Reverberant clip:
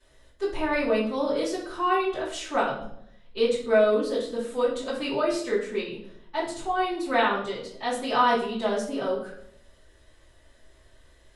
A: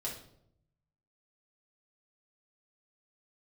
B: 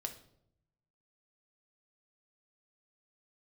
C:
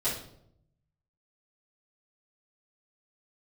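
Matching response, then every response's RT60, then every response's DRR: C; 0.70, 0.75, 0.70 seconds; −4.5, 4.5, −13.5 decibels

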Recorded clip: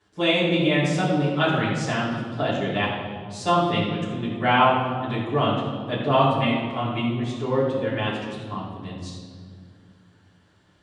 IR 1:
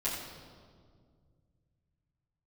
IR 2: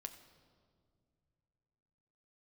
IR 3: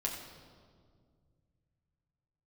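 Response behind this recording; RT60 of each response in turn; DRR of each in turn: 1; 2.0 s, non-exponential decay, 2.0 s; −12.0, 6.5, −2.5 decibels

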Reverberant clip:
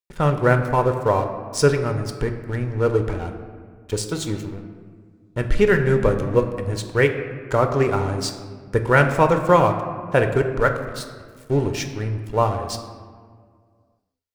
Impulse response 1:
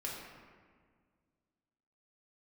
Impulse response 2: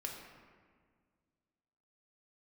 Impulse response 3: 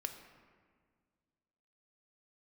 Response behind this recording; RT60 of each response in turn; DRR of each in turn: 3; 1.8, 1.8, 1.8 seconds; −4.5, −0.5, 5.5 decibels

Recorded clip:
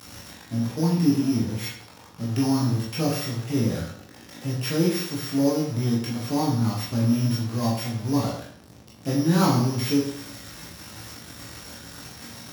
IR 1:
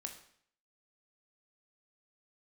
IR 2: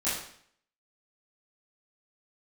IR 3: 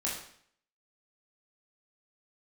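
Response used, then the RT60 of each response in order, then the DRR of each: 3; 0.60, 0.60, 0.60 seconds; 4.0, −12.5, −5.0 decibels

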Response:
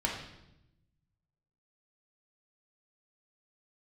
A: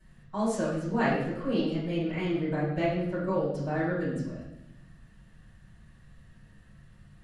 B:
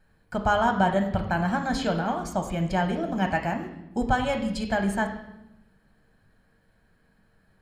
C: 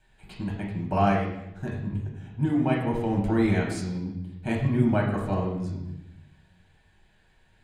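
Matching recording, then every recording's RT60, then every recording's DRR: C; 0.85, 0.85, 0.85 seconds; −11.5, 4.0, −2.0 decibels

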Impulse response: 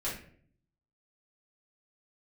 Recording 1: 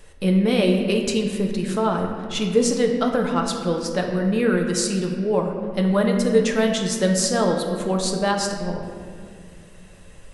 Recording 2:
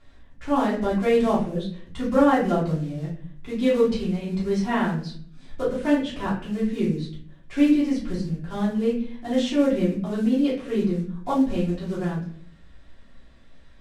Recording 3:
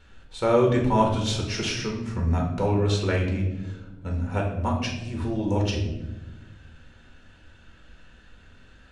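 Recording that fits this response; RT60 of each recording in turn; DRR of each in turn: 2; 2.0, 0.55, 1.1 seconds; 1.5, −9.0, −1.0 decibels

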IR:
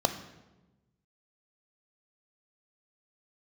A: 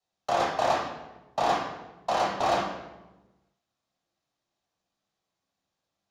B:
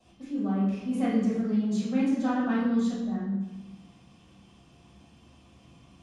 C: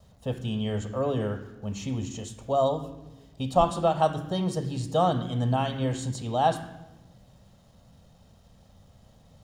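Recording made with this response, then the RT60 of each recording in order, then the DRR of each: C; 1.1, 1.1, 1.1 seconds; 0.0, −9.5, 10.0 decibels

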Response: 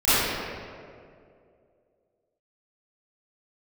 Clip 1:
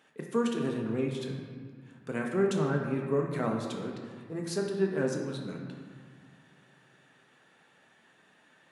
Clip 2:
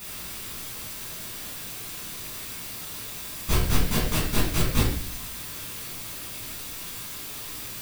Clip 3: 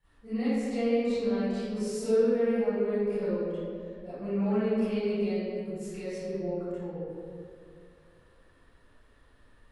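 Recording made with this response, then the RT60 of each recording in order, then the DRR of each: 3; 1.8, 0.55, 2.4 seconds; 0.5, −8.5, −18.5 decibels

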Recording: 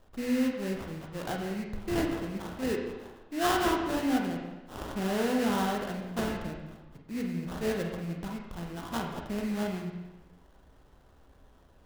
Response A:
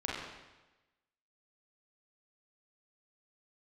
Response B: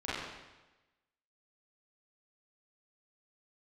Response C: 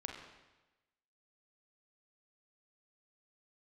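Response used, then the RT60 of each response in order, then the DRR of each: C; 1.1, 1.1, 1.1 seconds; −6.0, −12.0, 1.0 decibels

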